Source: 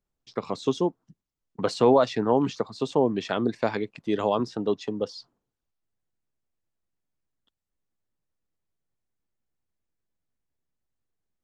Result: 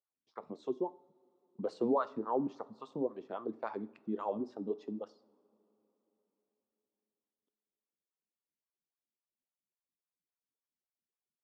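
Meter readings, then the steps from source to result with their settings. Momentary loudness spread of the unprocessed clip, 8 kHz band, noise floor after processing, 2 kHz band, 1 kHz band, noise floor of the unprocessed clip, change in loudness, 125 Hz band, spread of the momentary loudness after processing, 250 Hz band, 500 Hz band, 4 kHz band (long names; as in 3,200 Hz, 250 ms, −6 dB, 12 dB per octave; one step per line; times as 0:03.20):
12 LU, can't be measured, below −85 dBFS, −17.0 dB, −11.0 dB, −85 dBFS, −12.0 dB, −17.5 dB, 14 LU, −11.0 dB, −12.5 dB, below −20 dB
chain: high-shelf EQ 5,000 Hz +12 dB
LFO wah 3.6 Hz 210–1,200 Hz, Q 3.1
coupled-rooms reverb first 0.52 s, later 4.2 s, from −21 dB, DRR 14.5 dB
level −5.5 dB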